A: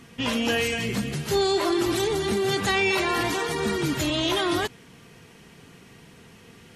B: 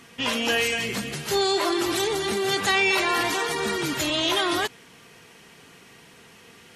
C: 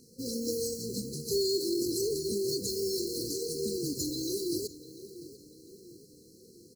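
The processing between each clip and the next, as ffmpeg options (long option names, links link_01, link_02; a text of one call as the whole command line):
ffmpeg -i in.wav -af "lowshelf=frequency=290:gain=-12,volume=3dB" out.wav
ffmpeg -i in.wav -filter_complex "[0:a]asplit=2[link_01][link_02];[link_02]adelay=695,lowpass=frequency=4000:poles=1,volume=-15dB,asplit=2[link_03][link_04];[link_04]adelay=695,lowpass=frequency=4000:poles=1,volume=0.51,asplit=2[link_05][link_06];[link_06]adelay=695,lowpass=frequency=4000:poles=1,volume=0.51,asplit=2[link_07][link_08];[link_08]adelay=695,lowpass=frequency=4000:poles=1,volume=0.51,asplit=2[link_09][link_10];[link_10]adelay=695,lowpass=frequency=4000:poles=1,volume=0.51[link_11];[link_01][link_03][link_05][link_07][link_09][link_11]amix=inputs=6:normalize=0,acrusher=bits=3:mode=log:mix=0:aa=0.000001,afftfilt=real='re*(1-between(b*sr/4096,530,4000))':imag='im*(1-between(b*sr/4096,530,4000))':win_size=4096:overlap=0.75,volume=-5dB" out.wav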